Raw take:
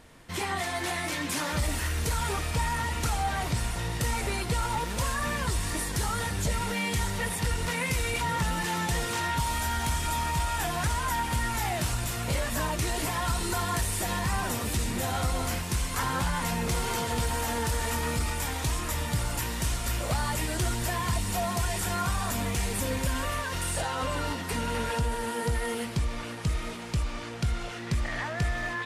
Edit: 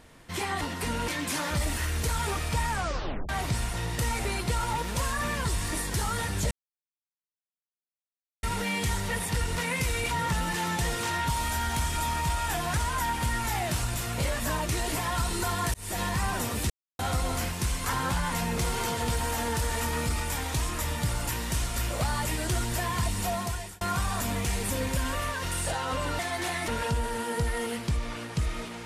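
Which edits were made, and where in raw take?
0.61–1.10 s: swap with 24.29–24.76 s
2.71 s: tape stop 0.60 s
6.53 s: insert silence 1.92 s
13.84–14.09 s: fade in
14.80–15.09 s: mute
21.25–21.91 s: fade out equal-power

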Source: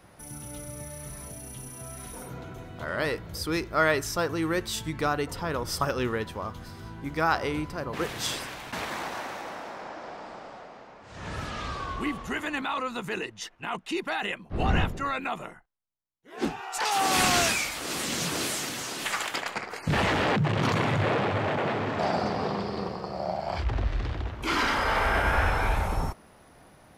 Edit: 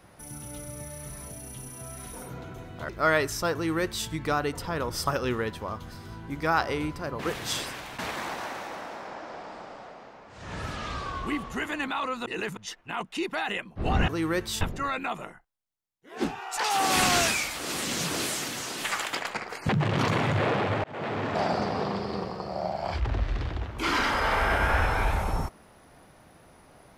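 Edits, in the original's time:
2.89–3.63 s: delete
4.28–4.81 s: copy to 14.82 s
13.00–13.31 s: reverse
19.90–20.33 s: delete
21.48–21.97 s: fade in equal-power

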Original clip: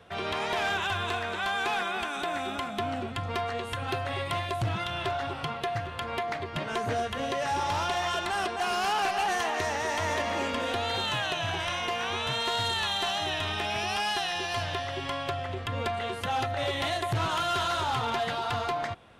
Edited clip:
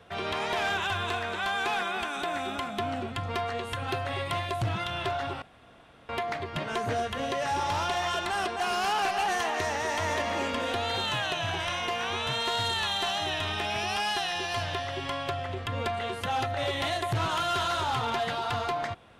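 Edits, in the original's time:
5.42–6.09 s: room tone

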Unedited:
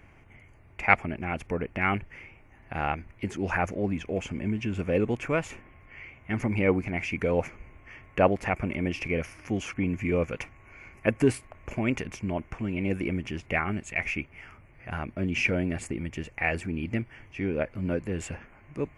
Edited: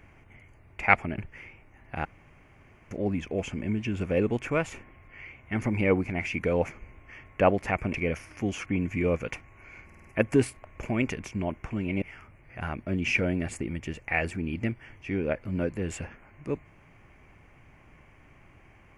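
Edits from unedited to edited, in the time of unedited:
1.18–1.96 s: delete
2.83–3.69 s: room tone
8.72–9.02 s: delete
10.93 s: stutter 0.05 s, 5 plays
12.90–14.32 s: delete

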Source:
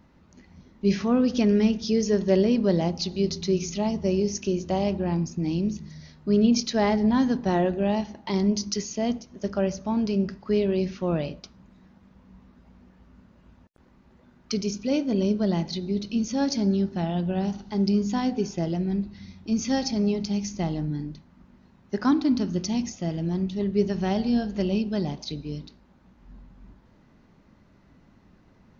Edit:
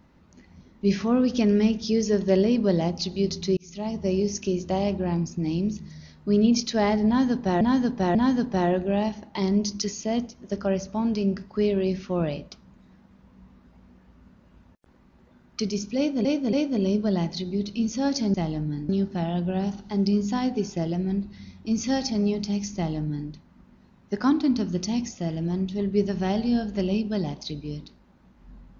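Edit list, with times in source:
3.57–4.27 s: fade in equal-power
7.07–7.61 s: loop, 3 plays
14.89–15.17 s: loop, 3 plays
20.56–21.11 s: copy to 16.70 s

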